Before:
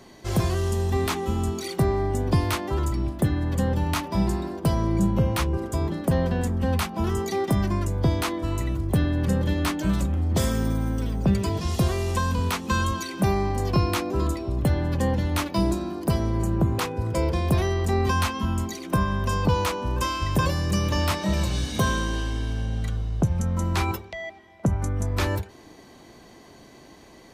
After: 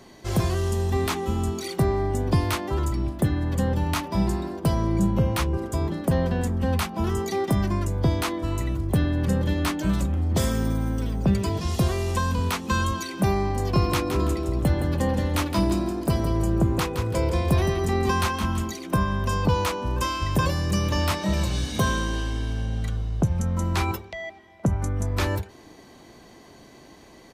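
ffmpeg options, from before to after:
-filter_complex "[0:a]asplit=3[a][b][c];[a]afade=t=out:st=13.75:d=0.02[d];[b]aecho=1:1:166|332|498|664:0.398|0.139|0.0488|0.0171,afade=t=in:st=13.75:d=0.02,afade=t=out:st=18.7:d=0.02[e];[c]afade=t=in:st=18.7:d=0.02[f];[d][e][f]amix=inputs=3:normalize=0"

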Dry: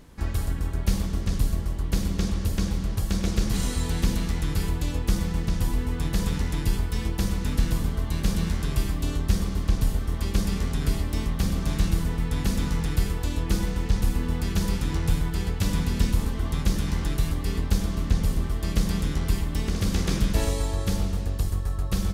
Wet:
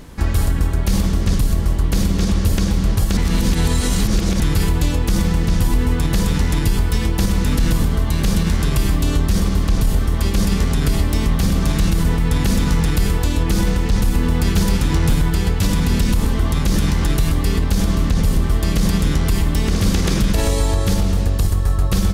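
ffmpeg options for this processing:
-filter_complex "[0:a]asettb=1/sr,asplit=3[a][b][c];[a]atrim=end=14.124[d];[b]atrim=start=14.12:end=15.26,asetpts=PTS-STARTPTS,afade=t=in:d=0.004:c=qsin,afade=t=out:st=1.136:d=0.004:c=qsin,aeval=exprs='0.168*(abs(mod(val(0)/0.168+3,4)-2)-1)':c=same[e];[c]atrim=start=15.256[f];[d][e]acrossfade=d=0.004:c1=hsin:c2=qsin[g];[g][f]acrossfade=d=0.004:c1=qsin:c2=hsin,asplit=3[h][i][j];[h]atrim=end=3.172[k];[i]atrim=start=3.168:end=4.402,asetpts=PTS-STARTPTS,areverse[l];[j]atrim=start=4.398[m];[k][l]acrossfade=d=0.004:c1=hsin:c2=hsin[n];[n][m]acrossfade=d=0.004:c1=hsin:c2=hsin,alimiter=level_in=18dB:limit=-1dB:release=50:level=0:latency=1,volume=-6.5dB"

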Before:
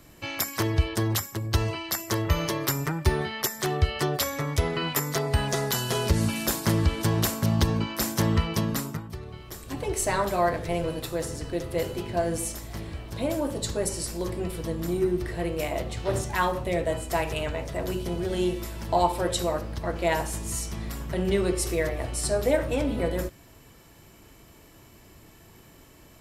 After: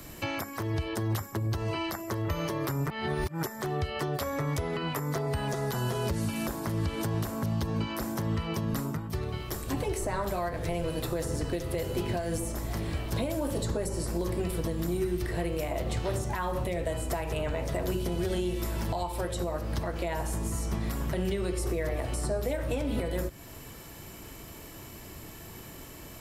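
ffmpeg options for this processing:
-filter_complex "[0:a]asplit=3[a][b][c];[a]atrim=end=2.902[d];[b]atrim=start=2.898:end=3.432,asetpts=PTS-STARTPTS,areverse[e];[c]atrim=start=3.428[f];[d][e]acrossfade=d=0.004:c1=hsin:c2=hsin[g];[g][f]acrossfade=d=0.004:c1=hsin:c2=hsin,highshelf=f=12k:g=7.5,acrossover=split=110|1600[h][i][j];[h]acompressor=threshold=-35dB:ratio=4[k];[i]acompressor=threshold=-32dB:ratio=4[l];[j]acompressor=threshold=-45dB:ratio=4[m];[k][l][m]amix=inputs=3:normalize=0,alimiter=level_in=3.5dB:limit=-24dB:level=0:latency=1:release=291,volume=-3.5dB,volume=6.5dB"

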